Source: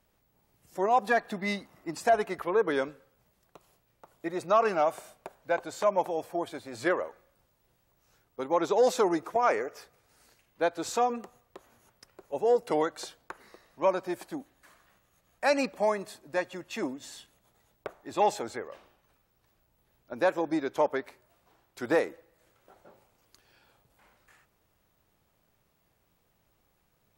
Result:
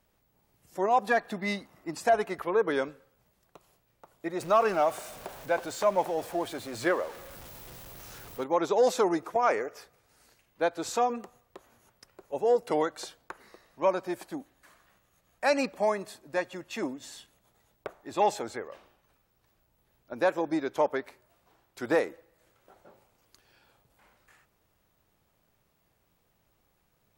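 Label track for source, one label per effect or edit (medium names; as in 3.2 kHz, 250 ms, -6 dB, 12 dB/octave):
4.400000	8.440000	jump at every zero crossing of -41 dBFS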